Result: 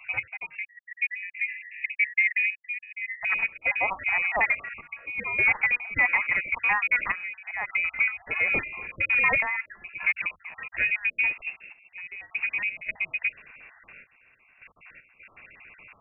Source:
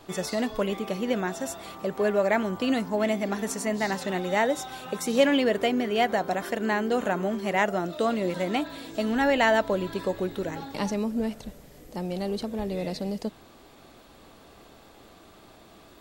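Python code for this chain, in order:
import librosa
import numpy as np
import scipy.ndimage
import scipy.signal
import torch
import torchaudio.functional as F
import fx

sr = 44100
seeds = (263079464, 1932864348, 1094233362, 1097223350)

y = fx.spec_dropout(x, sr, seeds[0], share_pct=37)
y = fx.step_gate(y, sr, bpm=78, pattern='x...xx.xxxxx', floor_db=-12.0, edge_ms=4.5)
y = fx.fold_sine(y, sr, drive_db=5, ceiling_db=-11.5)
y = fx.freq_invert(y, sr, carrier_hz=2700)
y = fx.brickwall_highpass(y, sr, low_hz=1700.0, at=(0.55, 3.23))
y = F.gain(torch.from_numpy(y), -4.5).numpy()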